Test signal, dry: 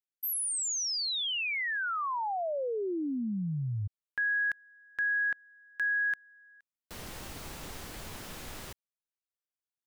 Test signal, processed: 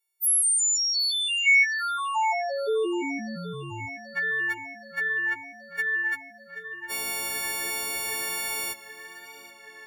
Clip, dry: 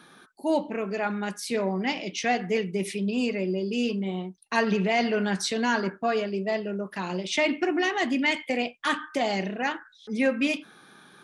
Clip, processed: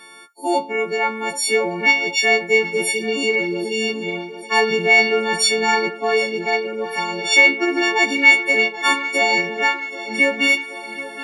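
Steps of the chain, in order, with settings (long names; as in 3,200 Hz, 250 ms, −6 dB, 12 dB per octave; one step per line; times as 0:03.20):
every partial snapped to a pitch grid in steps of 4 semitones
low-shelf EQ 200 Hz −11.5 dB
hollow resonant body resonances 410/810/2,200 Hz, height 11 dB, ringing for 30 ms
tape delay 777 ms, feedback 79%, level −14.5 dB, low-pass 5,700 Hz
level +2 dB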